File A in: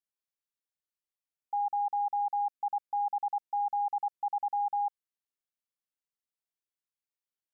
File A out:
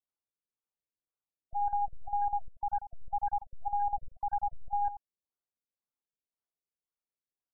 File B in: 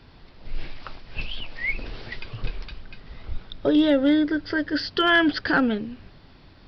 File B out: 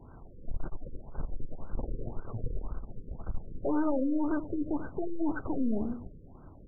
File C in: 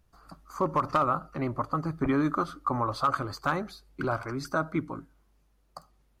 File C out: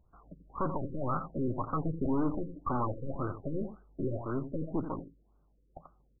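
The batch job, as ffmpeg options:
ffmpeg -i in.wav -af "aeval=exprs='(tanh(39.8*val(0)+0.75)-tanh(0.75))/39.8':channel_layout=same,aecho=1:1:87:0.266,afftfilt=real='re*lt(b*sr/1024,530*pow(1600/530,0.5+0.5*sin(2*PI*1.9*pts/sr)))':imag='im*lt(b*sr/1024,530*pow(1600/530,0.5+0.5*sin(2*PI*1.9*pts/sr)))':win_size=1024:overlap=0.75,volume=4.5dB" out.wav

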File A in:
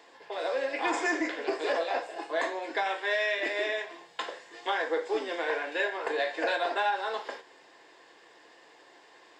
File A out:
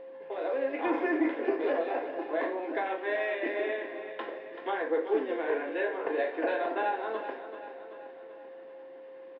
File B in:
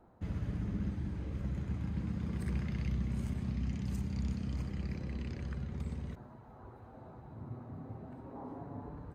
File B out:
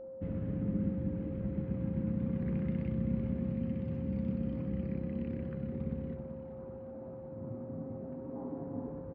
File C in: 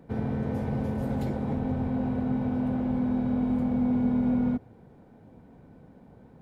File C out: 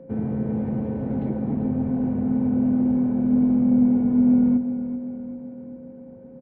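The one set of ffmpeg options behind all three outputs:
ffmpeg -i in.wav -af "lowpass=frequency=2900:width=0.5412,lowpass=frequency=2900:width=1.3066,equalizer=frequency=250:width_type=o:width=2.2:gain=13,bandreject=frequency=64.64:width_type=h:width=4,bandreject=frequency=129.28:width_type=h:width=4,bandreject=frequency=193.92:width_type=h:width=4,bandreject=frequency=258.56:width_type=h:width=4,bandreject=frequency=323.2:width_type=h:width=4,bandreject=frequency=387.84:width_type=h:width=4,bandreject=frequency=452.48:width_type=h:width=4,bandreject=frequency=517.12:width_type=h:width=4,bandreject=frequency=581.76:width_type=h:width=4,bandreject=frequency=646.4:width_type=h:width=4,bandreject=frequency=711.04:width_type=h:width=4,bandreject=frequency=775.68:width_type=h:width=4,bandreject=frequency=840.32:width_type=h:width=4,bandreject=frequency=904.96:width_type=h:width=4,bandreject=frequency=969.6:width_type=h:width=4,bandreject=frequency=1034.24:width_type=h:width=4,bandreject=frequency=1098.88:width_type=h:width=4,bandreject=frequency=1163.52:width_type=h:width=4,bandreject=frequency=1228.16:width_type=h:width=4,bandreject=frequency=1292.8:width_type=h:width=4,bandreject=frequency=1357.44:width_type=h:width=4,bandreject=frequency=1422.08:width_type=h:width=4,bandreject=frequency=1486.72:width_type=h:width=4,bandreject=frequency=1551.36:width_type=h:width=4,bandreject=frequency=1616:width_type=h:width=4,bandreject=frequency=1680.64:width_type=h:width=4,bandreject=frequency=1745.28:width_type=h:width=4,bandreject=frequency=1809.92:width_type=h:width=4,bandreject=frequency=1874.56:width_type=h:width=4,bandreject=frequency=1939.2:width_type=h:width=4,bandreject=frequency=2003.84:width_type=h:width=4,bandreject=frequency=2068.48:width_type=h:width=4,bandreject=frequency=2133.12:width_type=h:width=4,aeval=exprs='val(0)+0.0141*sin(2*PI*530*n/s)':channel_layout=same,aecho=1:1:384|768|1152|1536|1920|2304:0.282|0.152|0.0822|0.0444|0.024|0.0129,volume=-6dB" out.wav

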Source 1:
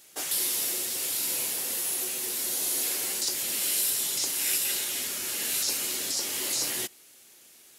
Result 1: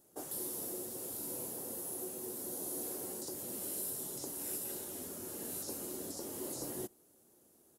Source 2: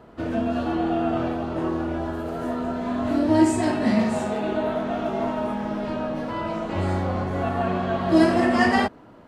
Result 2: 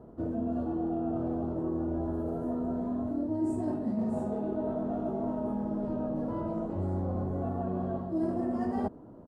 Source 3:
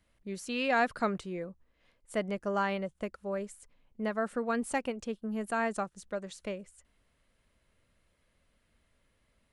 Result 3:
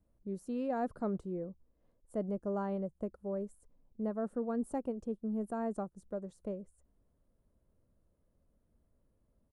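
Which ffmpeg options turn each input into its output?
ffmpeg -i in.wav -af "firequalizer=gain_entry='entry(330,0);entry(2200,-26);entry(10000,-12)':delay=0.05:min_phase=1,areverse,acompressor=threshold=-29dB:ratio=5,areverse" out.wav

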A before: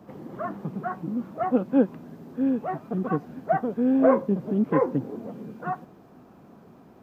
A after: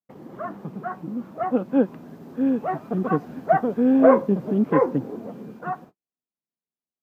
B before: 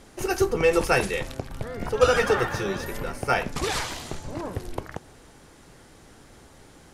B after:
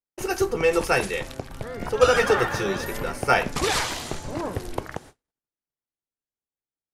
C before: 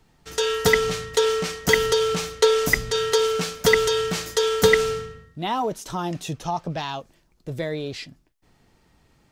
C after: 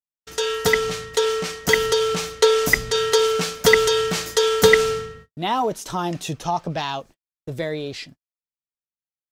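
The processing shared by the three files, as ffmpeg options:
ffmpeg -i in.wav -af "lowshelf=frequency=200:gain=-4,dynaudnorm=framelen=210:gausssize=21:maxgain=7dB,agate=range=-51dB:threshold=-43dB:ratio=16:detection=peak" out.wav

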